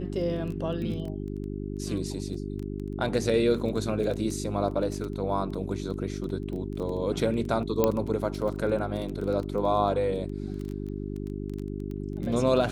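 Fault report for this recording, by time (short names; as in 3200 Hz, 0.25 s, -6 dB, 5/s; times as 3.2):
crackle 13/s
hum 50 Hz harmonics 8 -34 dBFS
7.84 pop -9 dBFS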